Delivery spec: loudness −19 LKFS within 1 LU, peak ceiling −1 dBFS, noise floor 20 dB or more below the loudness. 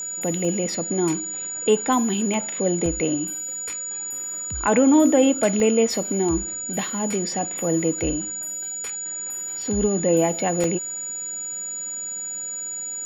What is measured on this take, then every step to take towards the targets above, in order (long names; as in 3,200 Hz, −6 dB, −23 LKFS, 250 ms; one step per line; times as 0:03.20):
number of dropouts 6; longest dropout 1.5 ms; interfering tone 6,900 Hz; level of the tone −28 dBFS; integrated loudness −23.0 LKFS; sample peak −6.5 dBFS; target loudness −19.0 LKFS
→ repair the gap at 0:00.45/0:02.34/0:02.86/0:05.60/0:09.62/0:10.64, 1.5 ms
notch filter 6,900 Hz, Q 30
level +4 dB